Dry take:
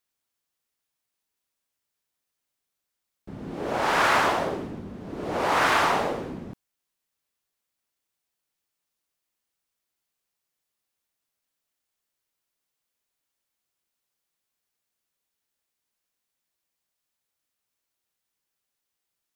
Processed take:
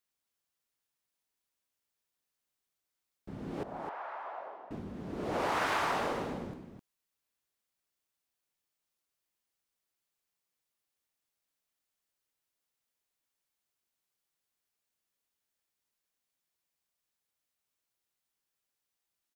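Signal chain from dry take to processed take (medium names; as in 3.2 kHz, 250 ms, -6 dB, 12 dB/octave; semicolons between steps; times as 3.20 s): compression, threshold -24 dBFS, peak gain reduction 7 dB; 3.63–4.71 s: ladder band-pass 870 Hz, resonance 40%; on a send: delay 259 ms -8 dB; on the sum: trim -4.5 dB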